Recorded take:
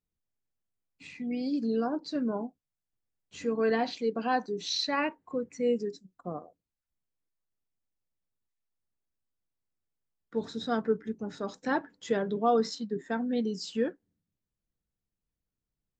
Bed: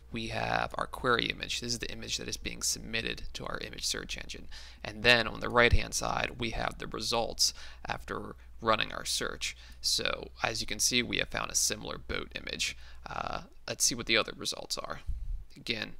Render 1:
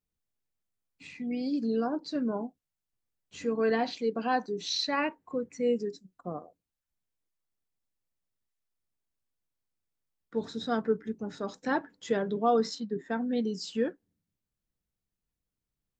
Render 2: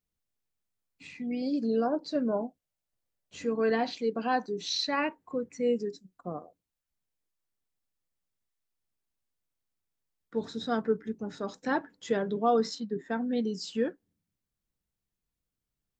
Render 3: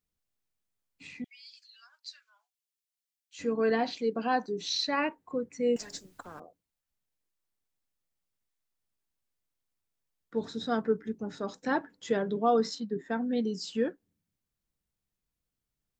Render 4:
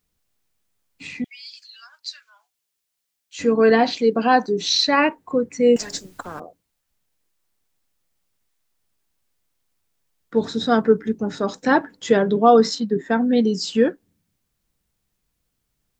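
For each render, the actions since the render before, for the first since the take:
12.80–13.21 s: distance through air 77 m
1.42–3.42 s: peaking EQ 590 Hz +7.5 dB 0.52 oct
1.24–3.39 s: Bessel high-pass 2.8 kHz, order 6; 5.76–6.40 s: spectrum-flattening compressor 10:1
trim +12 dB

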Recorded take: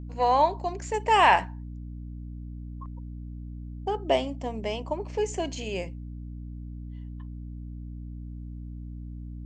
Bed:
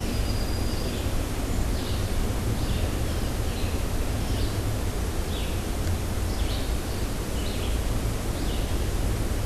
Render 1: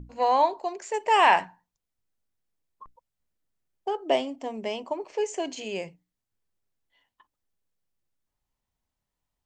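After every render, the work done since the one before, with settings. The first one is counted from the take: hum notches 60/120/180/240/300 Hz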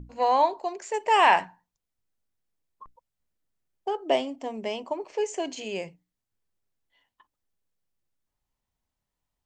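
no audible change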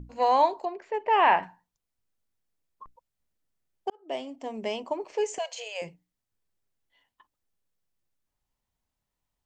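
0.65–1.43 s: distance through air 360 m; 3.90–4.64 s: fade in; 5.38–5.82 s: brick-wall FIR high-pass 440 Hz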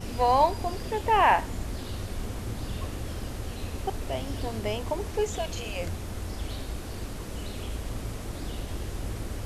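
add bed -7.5 dB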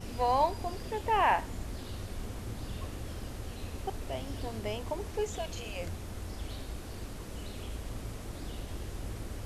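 trim -5.5 dB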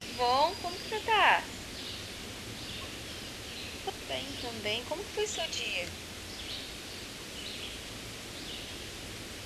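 frequency weighting D; gate with hold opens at -35 dBFS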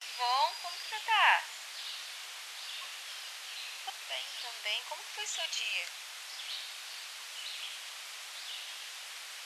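high-pass 820 Hz 24 dB/octave

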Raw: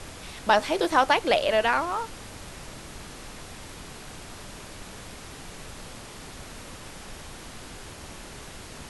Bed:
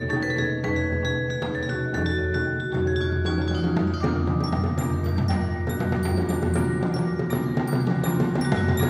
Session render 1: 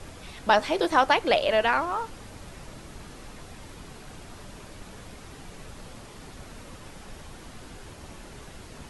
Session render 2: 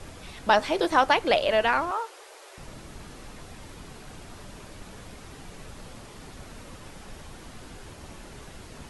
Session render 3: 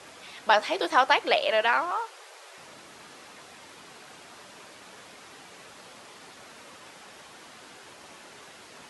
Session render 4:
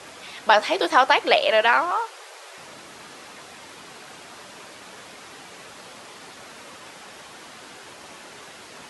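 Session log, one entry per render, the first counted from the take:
noise reduction 6 dB, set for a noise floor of -43 dBFS
1.91–2.58 s: steep high-pass 360 Hz 72 dB/octave
frequency weighting A
trim +5.5 dB; peak limiter -3 dBFS, peak gain reduction 3 dB

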